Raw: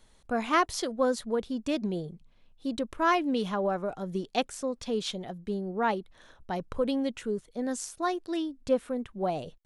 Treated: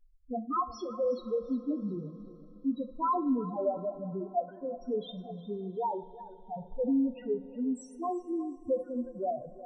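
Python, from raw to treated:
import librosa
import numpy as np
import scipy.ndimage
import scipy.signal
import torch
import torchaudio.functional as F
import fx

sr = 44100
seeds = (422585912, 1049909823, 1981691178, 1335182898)

y = fx.sine_speech(x, sr, at=(4.21, 4.61))
y = fx.spec_topn(y, sr, count=2)
y = fx.echo_feedback(y, sr, ms=360, feedback_pct=29, wet_db=-16.5)
y = fx.rev_double_slope(y, sr, seeds[0], early_s=0.41, late_s=4.6, knee_db=-18, drr_db=9.0)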